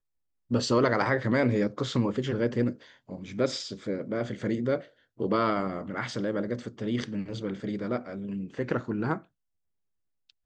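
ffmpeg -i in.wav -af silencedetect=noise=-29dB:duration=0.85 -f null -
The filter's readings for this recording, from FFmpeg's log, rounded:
silence_start: 9.15
silence_end: 10.45 | silence_duration: 1.30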